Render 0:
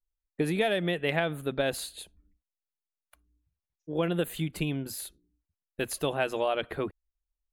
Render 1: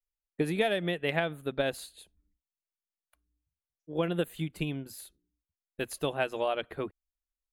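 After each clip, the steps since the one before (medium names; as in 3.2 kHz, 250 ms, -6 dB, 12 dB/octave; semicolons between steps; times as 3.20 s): upward expansion 1.5:1, over -41 dBFS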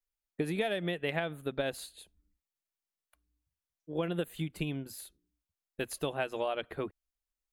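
compression 2:1, threshold -31 dBFS, peak gain reduction 5.5 dB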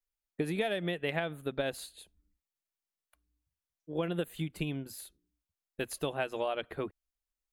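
no audible change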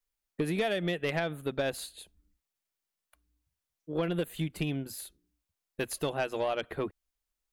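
saturation -25.5 dBFS, distortion -17 dB; trim +4 dB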